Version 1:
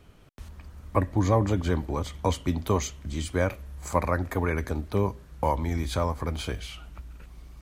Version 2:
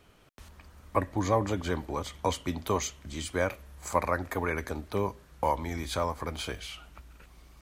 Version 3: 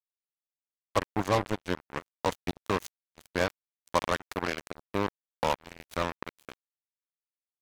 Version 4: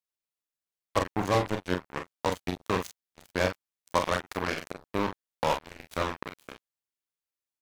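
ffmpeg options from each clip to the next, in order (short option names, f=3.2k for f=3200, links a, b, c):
-af "lowshelf=f=280:g=-9.5"
-af "acrusher=bits=3:mix=0:aa=0.5"
-af "aecho=1:1:33|44:0.355|0.422"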